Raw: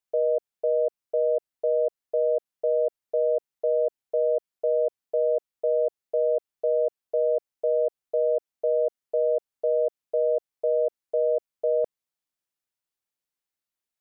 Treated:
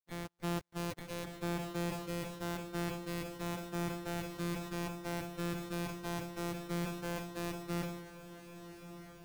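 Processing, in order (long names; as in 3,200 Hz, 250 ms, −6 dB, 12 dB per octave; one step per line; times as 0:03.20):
samples sorted by size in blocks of 256 samples
noise gate −20 dBFS, range −45 dB
brickwall limiter −39 dBFS, peak gain reduction 11.5 dB
time stretch by phase vocoder 0.66×
feedback delay with all-pass diffusion 1,214 ms, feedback 52%, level −11 dB
level that may fall only so fast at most 57 dB per second
level +11 dB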